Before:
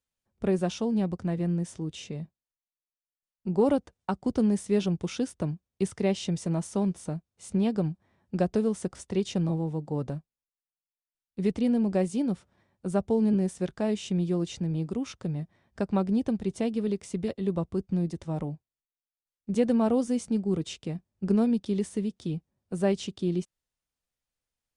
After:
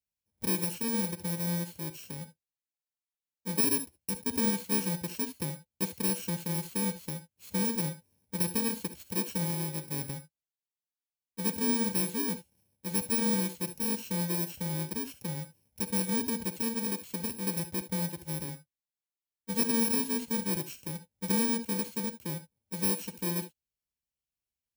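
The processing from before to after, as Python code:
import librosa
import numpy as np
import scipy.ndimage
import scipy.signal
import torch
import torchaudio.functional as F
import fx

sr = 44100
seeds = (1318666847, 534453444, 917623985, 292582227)

y = fx.bit_reversed(x, sr, seeds[0], block=64)
y = scipy.signal.sosfilt(scipy.signal.butter(2, 42.0, 'highpass', fs=sr, output='sos'), y)
y = fx.peak_eq(y, sr, hz=1300.0, db=-11.5, octaves=0.42)
y = fx.rev_gated(y, sr, seeds[1], gate_ms=90, shape='rising', drr_db=11.0)
y = y * 10.0 ** (-4.5 / 20.0)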